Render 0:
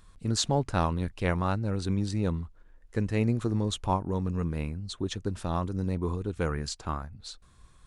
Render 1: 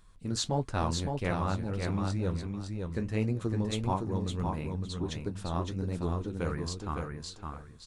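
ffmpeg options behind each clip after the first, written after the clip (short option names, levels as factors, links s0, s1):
-filter_complex "[0:a]flanger=delay=5.2:depth=9.4:regen=-52:speed=1.5:shape=triangular,asplit=2[s0][s1];[s1]aecho=0:1:561|1122|1683:0.596|0.119|0.0238[s2];[s0][s2]amix=inputs=2:normalize=0"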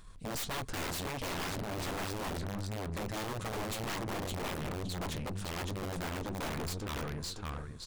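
-af "aeval=exprs='(mod(26.6*val(0)+1,2)-1)/26.6':c=same,aeval=exprs='(tanh(141*val(0)+0.45)-tanh(0.45))/141':c=same,volume=2.37"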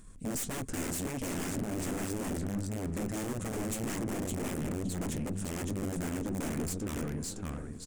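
-filter_complex "[0:a]equalizer=f=250:t=o:w=1:g=9,equalizer=f=1000:t=o:w=1:g=-6,equalizer=f=4000:t=o:w=1:g=-10,equalizer=f=8000:t=o:w=1:g=9,asplit=2[s0][s1];[s1]adelay=1050,volume=0.2,highshelf=f=4000:g=-23.6[s2];[s0][s2]amix=inputs=2:normalize=0"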